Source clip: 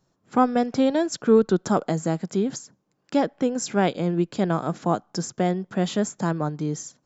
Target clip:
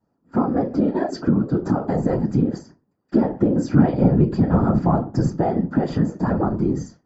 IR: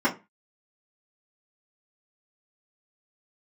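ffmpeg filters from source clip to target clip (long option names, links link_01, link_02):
-filter_complex "[0:a]agate=range=-8dB:threshold=-46dB:ratio=16:detection=peak[link_01];[1:a]atrim=start_sample=2205,afade=type=out:start_time=0.31:duration=0.01,atrim=end_sample=14112,asetrate=38367,aresample=44100[link_02];[link_01][link_02]afir=irnorm=-1:irlink=0,acompressor=threshold=-5dB:ratio=16,asettb=1/sr,asplit=3[link_03][link_04][link_05];[link_03]atrim=end=3.164[link_06];[link_04]atrim=start=3.16:end=5.38,asetpts=PTS-STARTPTS,afade=type=in:duration=0.004:curve=qsin,afade=type=out:start_time=2.216:duration=0.004:curve=qsin,lowshelf=frequency=110:width_type=q:width=3:gain=-11[link_07];[link_05]atrim=start=5.376[link_08];[link_06][link_07]acrossfade=duration=0.004:curve1=hsin:curve2=qsin[link_09];[link_09][link_08]acrossfade=duration=0.004:curve1=qsin:curve2=hsin,afftfilt=real='hypot(re,im)*cos(2*PI*random(0))':imag='hypot(re,im)*sin(2*PI*random(1))':win_size=512:overlap=0.75,equalizer=frequency=330:width_type=o:width=3:gain=3,volume=-7dB"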